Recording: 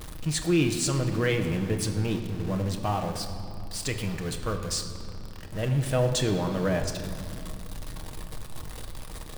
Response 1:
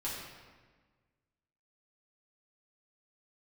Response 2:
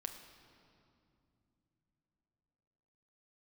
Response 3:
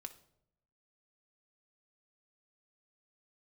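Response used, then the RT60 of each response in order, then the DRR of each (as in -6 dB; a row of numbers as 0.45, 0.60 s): 2; 1.4 s, not exponential, 0.75 s; -8.0, 3.5, 6.0 dB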